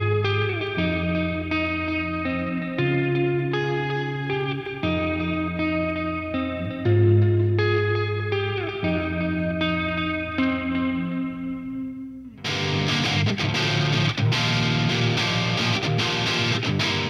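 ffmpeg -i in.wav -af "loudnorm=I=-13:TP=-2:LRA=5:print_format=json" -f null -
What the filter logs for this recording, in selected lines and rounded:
"input_i" : "-23.1",
"input_tp" : "-8.9",
"input_lra" : "3.5",
"input_thresh" : "-33.2",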